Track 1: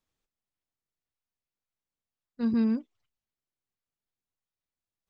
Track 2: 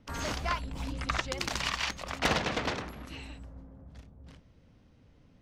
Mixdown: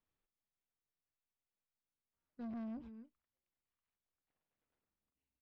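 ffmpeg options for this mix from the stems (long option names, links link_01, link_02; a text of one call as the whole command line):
ffmpeg -i stem1.wav -i stem2.wav -filter_complex "[0:a]volume=-5dB,asplit=3[link_01][link_02][link_03];[link_02]volume=-22dB[link_04];[1:a]alimiter=level_in=3dB:limit=-24dB:level=0:latency=1:release=441,volume=-3dB,tremolo=f=150:d=0.824,adelay=2050,volume=-7dB,afade=type=in:start_time=4.39:duration=0.4:silence=0.446684[link_05];[link_03]apad=whole_len=329234[link_06];[link_05][link_06]sidechaingate=range=-41dB:threshold=-45dB:ratio=16:detection=peak[link_07];[link_04]aecho=0:1:270:1[link_08];[link_01][link_07][link_08]amix=inputs=3:normalize=0,lowpass=2900,asoftclip=type=tanh:threshold=-34.5dB,alimiter=level_in=17.5dB:limit=-24dB:level=0:latency=1:release=251,volume=-17.5dB" out.wav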